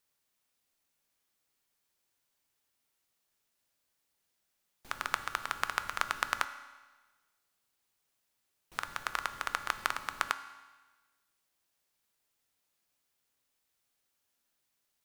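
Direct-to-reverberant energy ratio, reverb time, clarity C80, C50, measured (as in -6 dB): 10.0 dB, 1.3 s, 14.0 dB, 12.5 dB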